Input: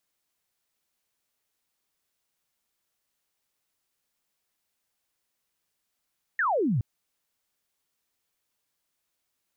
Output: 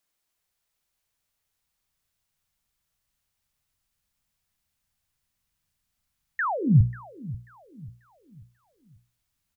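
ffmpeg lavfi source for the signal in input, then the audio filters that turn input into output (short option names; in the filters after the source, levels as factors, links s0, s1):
-f lavfi -i "aevalsrc='0.0794*clip(t/0.002,0,1)*clip((0.42-t)/0.002,0,1)*sin(2*PI*1900*0.42/log(100/1900)*(exp(log(100/1900)*t/0.42)-1))':d=0.42:s=44100"
-filter_complex "[0:a]asubboost=boost=9.5:cutoff=130,bandreject=f=60:t=h:w=6,bandreject=f=120:t=h:w=6,bandreject=f=180:t=h:w=6,bandreject=f=240:t=h:w=6,bandreject=f=300:t=h:w=6,bandreject=f=360:t=h:w=6,bandreject=f=420:t=h:w=6,bandreject=f=480:t=h:w=6,bandreject=f=540:t=h:w=6,asplit=2[s0][s1];[s1]adelay=539,lowpass=f=2000:p=1,volume=0.133,asplit=2[s2][s3];[s3]adelay=539,lowpass=f=2000:p=1,volume=0.43,asplit=2[s4][s5];[s5]adelay=539,lowpass=f=2000:p=1,volume=0.43,asplit=2[s6][s7];[s7]adelay=539,lowpass=f=2000:p=1,volume=0.43[s8];[s0][s2][s4][s6][s8]amix=inputs=5:normalize=0"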